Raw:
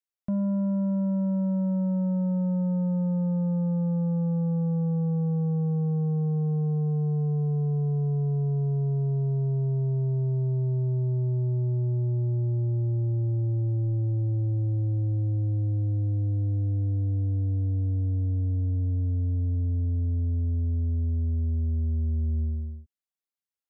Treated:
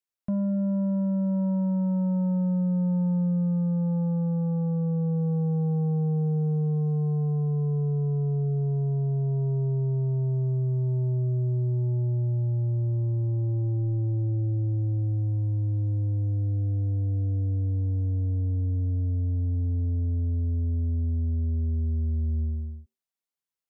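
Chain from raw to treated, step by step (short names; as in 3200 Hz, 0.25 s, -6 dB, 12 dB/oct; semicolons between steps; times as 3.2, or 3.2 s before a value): on a send: synth low-pass 970 Hz, resonance Q 4.3 + reverb RT60 0.25 s, pre-delay 3 ms, DRR 13 dB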